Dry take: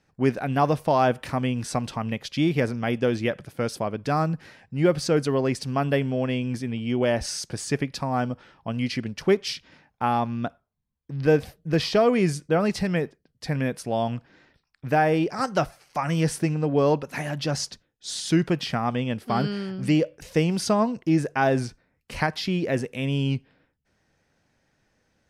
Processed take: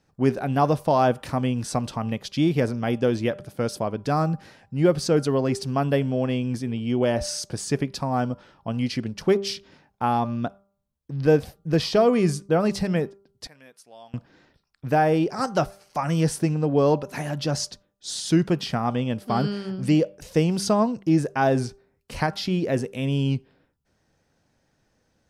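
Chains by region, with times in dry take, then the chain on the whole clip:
0:13.47–0:14.14: low-pass filter 1,600 Hz 6 dB per octave + first difference
whole clip: parametric band 2,100 Hz −5.5 dB 1.1 octaves; hum removal 197.8 Hz, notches 7; level +1.5 dB

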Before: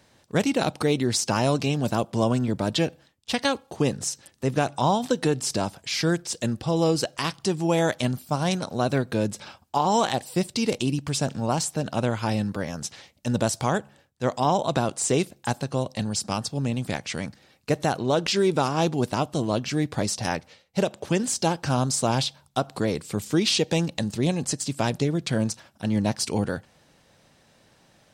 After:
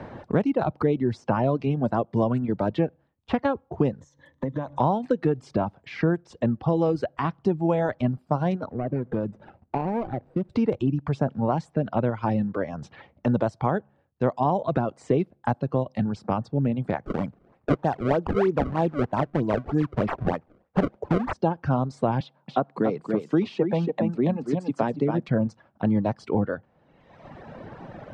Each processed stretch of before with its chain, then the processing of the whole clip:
0:04.01–0:04.80: EQ curve with evenly spaced ripples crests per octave 1.1, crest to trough 12 dB + downward compressor, threshold −34 dBFS
0:08.71–0:10.50: running median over 41 samples + downward compressor 2.5 to 1, threshold −31 dBFS
0:17.03–0:21.33: sample-and-hold swept by an LFO 29×, swing 160% 3.2 Hz + high-shelf EQ 4,000 Hz +9 dB
0:22.20–0:25.28: high-pass filter 160 Hz 24 dB per octave + single-tap delay 280 ms −5.5 dB
whole clip: reverb reduction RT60 1.2 s; low-pass filter 1,200 Hz 12 dB per octave; multiband upward and downward compressor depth 70%; level +2 dB

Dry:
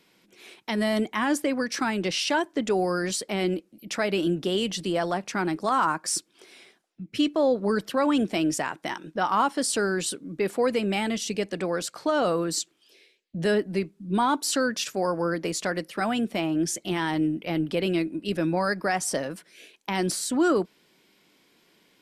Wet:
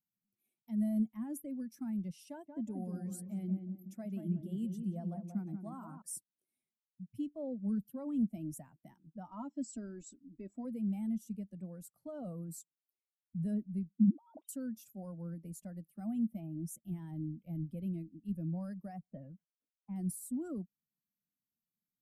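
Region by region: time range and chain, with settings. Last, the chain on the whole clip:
0:02.29–0:06.02: high-pass filter 61 Hz + feedback echo with a low-pass in the loop 182 ms, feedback 47%, low-pass 1,900 Hz, level −4 dB
0:09.27–0:10.65: linear-phase brick-wall low-pass 8,100 Hz + comb filter 3.1 ms
0:13.98–0:14.49: three sine waves on the formant tracks + parametric band 640 Hz +14 dB 1.1 octaves + compressor whose output falls as the input rises −28 dBFS
0:18.99–0:19.96: low-pass filter 2,900 Hz 24 dB per octave + low-pass that shuts in the quiet parts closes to 550 Hz, open at −26 dBFS + downward expander −56 dBFS
whole clip: spectral dynamics exaggerated over time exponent 1.5; drawn EQ curve 110 Hz 0 dB, 220 Hz +4 dB, 410 Hz −22 dB, 590 Hz −12 dB, 870 Hz −20 dB, 1,700 Hz −28 dB, 2,400 Hz −28 dB, 4,400 Hz −30 dB, 11,000 Hz 0 dB; level −5 dB

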